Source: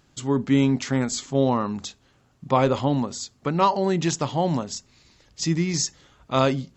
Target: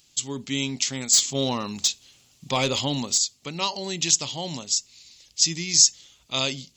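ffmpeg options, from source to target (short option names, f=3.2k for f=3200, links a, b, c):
-filter_complex "[0:a]aexciter=amount=10.8:drive=1.8:freq=2.3k,asettb=1/sr,asplit=3[a][b][c];[a]atrim=end=1.134[d];[b]atrim=start=1.13:end=3.18,asetpts=PTS-STARTPTS,afade=t=in:d=0.004:c=qsin,afade=t=out:st=2.046:d=0.004:c=qsin,acontrast=43[e];[c]atrim=start=3.176[f];[d][e]acrossfade=d=0.004:c1=hsin:c2=qsin[g];[g][f]acrossfade=d=0.004:c1=qsin:c2=hsin,volume=-10.5dB"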